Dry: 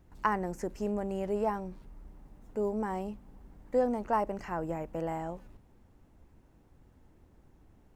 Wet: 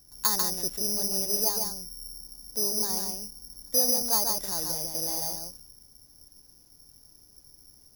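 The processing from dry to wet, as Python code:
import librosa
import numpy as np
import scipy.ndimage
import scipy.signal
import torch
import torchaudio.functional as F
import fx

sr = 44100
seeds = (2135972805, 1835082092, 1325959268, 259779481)

y = x + 10.0 ** (-4.0 / 20.0) * np.pad(x, (int(144 * sr / 1000.0), 0))[:len(x)]
y = (np.kron(y[::8], np.eye(8)[0]) * 8)[:len(y)]
y = y * librosa.db_to_amplitude(-6.0)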